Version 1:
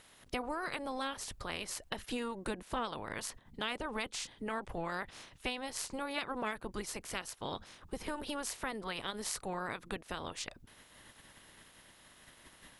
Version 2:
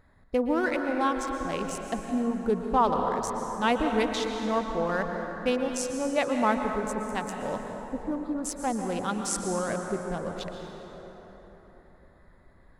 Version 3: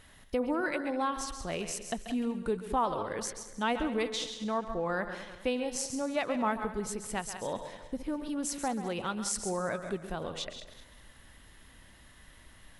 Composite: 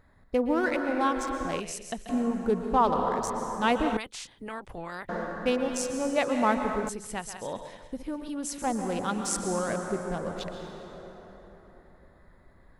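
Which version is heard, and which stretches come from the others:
2
1.60–2.09 s: from 3
3.97–5.09 s: from 1
6.89–8.62 s: from 3

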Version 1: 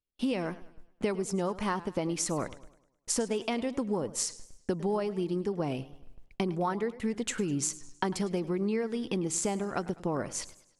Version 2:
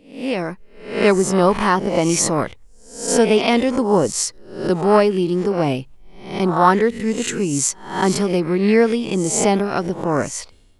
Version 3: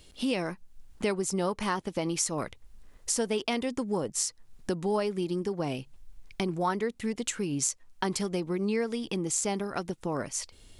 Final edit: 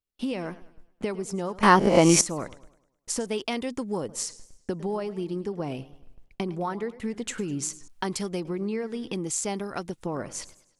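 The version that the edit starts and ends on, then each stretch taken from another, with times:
1
1.63–2.21 s: from 2
3.26–4.09 s: from 3
7.88–8.45 s: from 3
9.13–10.06 s: from 3

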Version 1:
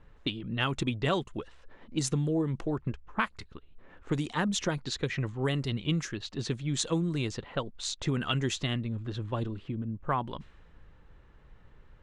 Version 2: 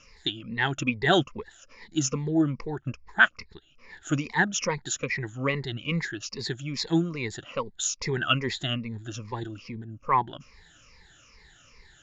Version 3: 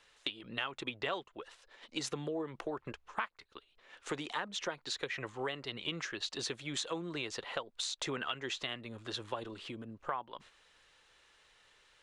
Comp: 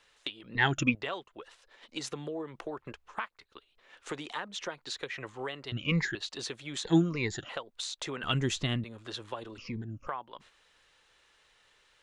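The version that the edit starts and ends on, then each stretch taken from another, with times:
3
0.55–0.95 s: from 2
5.72–6.15 s: from 2
6.85–7.49 s: from 2
8.23–8.84 s: from 1
9.58–10.07 s: from 2

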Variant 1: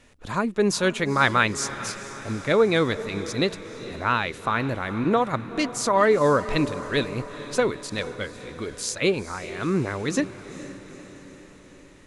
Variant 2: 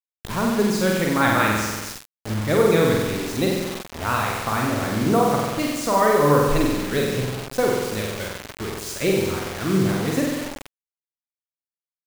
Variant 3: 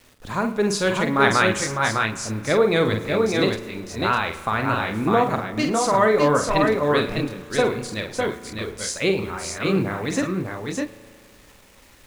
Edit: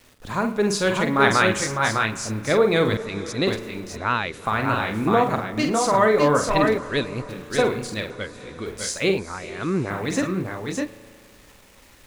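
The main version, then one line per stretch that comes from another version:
3
2.97–3.47 s: from 1
3.97–4.45 s: from 1
6.78–7.29 s: from 1
8.10–8.66 s: from 1
9.18–9.90 s: from 1
not used: 2

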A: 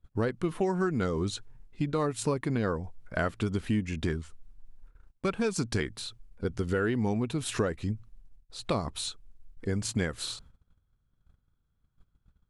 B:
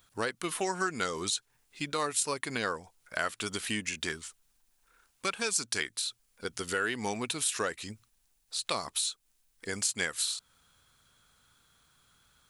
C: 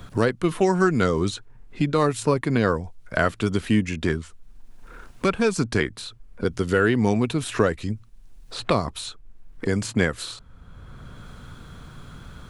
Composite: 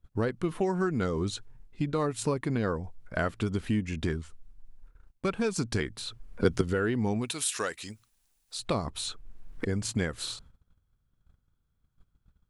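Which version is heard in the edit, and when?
A
6.07–6.61 s: from C
7.25–8.59 s: from B, crossfade 0.16 s
9.09–9.65 s: from C

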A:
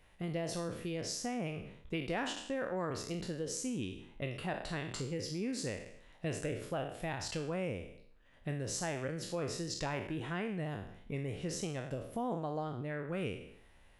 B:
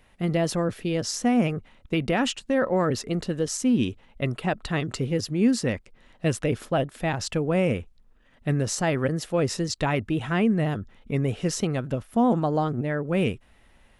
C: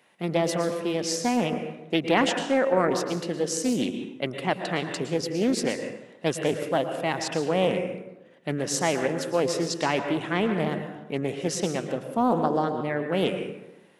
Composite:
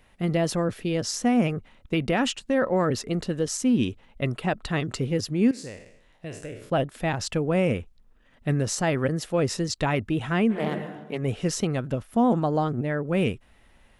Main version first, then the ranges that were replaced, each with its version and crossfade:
B
5.51–6.70 s: from A
10.56–11.20 s: from C, crossfade 0.16 s

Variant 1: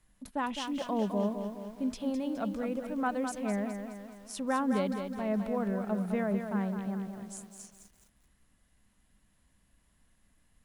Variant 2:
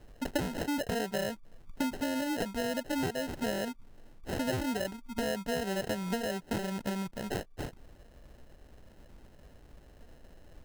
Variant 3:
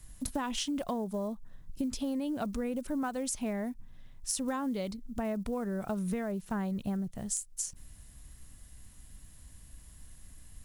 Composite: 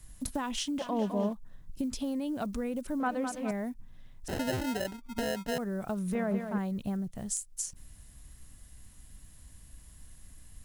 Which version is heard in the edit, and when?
3
0.79–1.33 s: from 1
3.00–3.51 s: from 1
4.28–5.58 s: from 2
6.15–6.58 s: from 1

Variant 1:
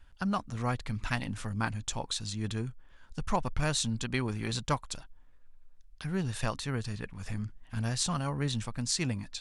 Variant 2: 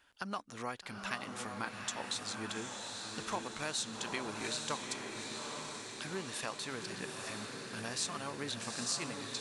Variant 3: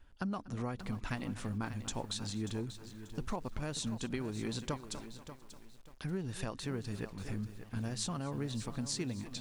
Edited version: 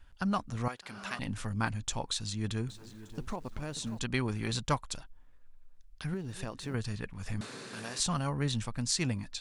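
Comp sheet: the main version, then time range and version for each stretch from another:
1
0.68–1.19 s: from 2
2.68–3.99 s: from 3
6.14–6.74 s: from 3
7.41–8.00 s: from 2

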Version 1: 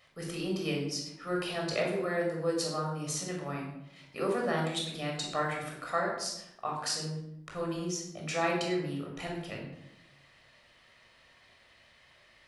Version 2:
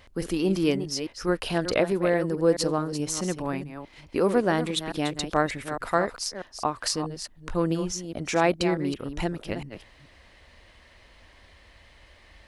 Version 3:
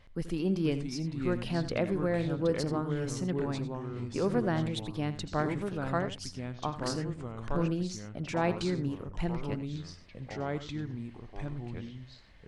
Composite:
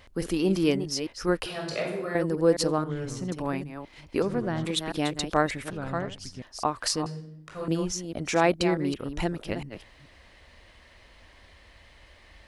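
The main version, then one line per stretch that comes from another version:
2
1.46–2.15 s: from 1
2.84–3.32 s: from 3
4.22–4.65 s: from 3
5.70–6.42 s: from 3
7.06–7.68 s: from 1

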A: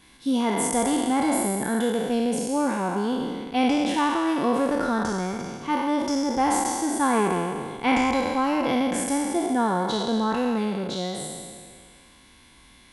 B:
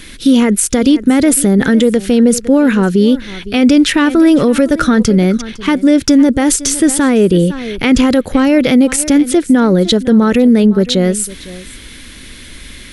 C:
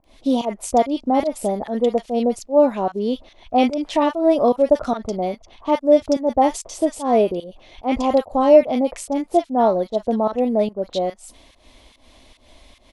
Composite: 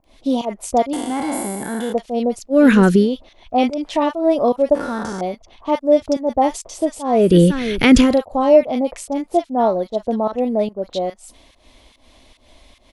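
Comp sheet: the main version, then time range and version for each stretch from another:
C
0.93–1.93 s: from A
2.58–3.02 s: from B, crossfade 0.16 s
4.75–5.21 s: from A
7.26–8.08 s: from B, crossfade 0.24 s

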